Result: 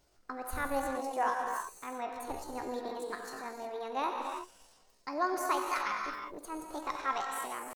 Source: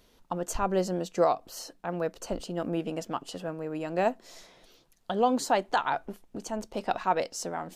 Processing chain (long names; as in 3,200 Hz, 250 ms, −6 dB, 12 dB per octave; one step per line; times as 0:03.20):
reverb whose tail is shaped and stops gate 380 ms flat, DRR 1 dB
pitch shifter +6.5 semitones
level −8 dB